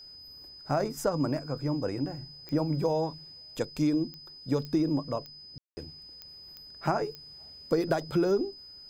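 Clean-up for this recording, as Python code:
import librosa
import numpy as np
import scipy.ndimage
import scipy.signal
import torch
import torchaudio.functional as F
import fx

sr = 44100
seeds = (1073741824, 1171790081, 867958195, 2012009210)

y = fx.fix_declick_ar(x, sr, threshold=10.0)
y = fx.notch(y, sr, hz=5000.0, q=30.0)
y = fx.fix_ambience(y, sr, seeds[0], print_start_s=6.27, print_end_s=6.77, start_s=5.58, end_s=5.77)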